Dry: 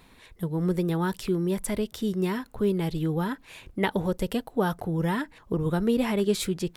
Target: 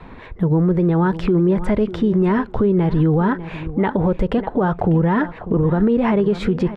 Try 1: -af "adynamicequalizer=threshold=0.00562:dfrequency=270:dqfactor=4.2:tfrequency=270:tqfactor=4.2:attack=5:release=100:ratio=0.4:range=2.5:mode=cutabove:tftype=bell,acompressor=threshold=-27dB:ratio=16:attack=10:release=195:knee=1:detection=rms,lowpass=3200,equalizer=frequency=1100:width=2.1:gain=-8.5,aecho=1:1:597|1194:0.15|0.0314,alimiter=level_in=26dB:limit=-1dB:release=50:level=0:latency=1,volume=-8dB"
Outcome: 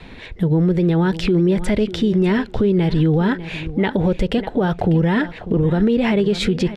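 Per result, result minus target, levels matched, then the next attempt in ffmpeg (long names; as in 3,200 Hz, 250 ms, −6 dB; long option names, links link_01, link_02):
4,000 Hz band +10.5 dB; 1,000 Hz band −3.5 dB
-af "adynamicequalizer=threshold=0.00562:dfrequency=270:dqfactor=4.2:tfrequency=270:tqfactor=4.2:attack=5:release=100:ratio=0.4:range=2.5:mode=cutabove:tftype=bell,acompressor=threshold=-27dB:ratio=16:attack=10:release=195:knee=1:detection=rms,lowpass=1500,equalizer=frequency=1100:width=2.1:gain=-8.5,aecho=1:1:597|1194:0.15|0.0314,alimiter=level_in=26dB:limit=-1dB:release=50:level=0:latency=1,volume=-8dB"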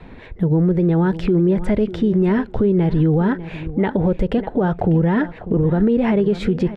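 1,000 Hz band −4.0 dB
-af "adynamicequalizer=threshold=0.00562:dfrequency=270:dqfactor=4.2:tfrequency=270:tqfactor=4.2:attack=5:release=100:ratio=0.4:range=2.5:mode=cutabove:tftype=bell,acompressor=threshold=-27dB:ratio=16:attack=10:release=195:knee=1:detection=rms,lowpass=1500,aecho=1:1:597|1194:0.15|0.0314,alimiter=level_in=26dB:limit=-1dB:release=50:level=0:latency=1,volume=-8dB"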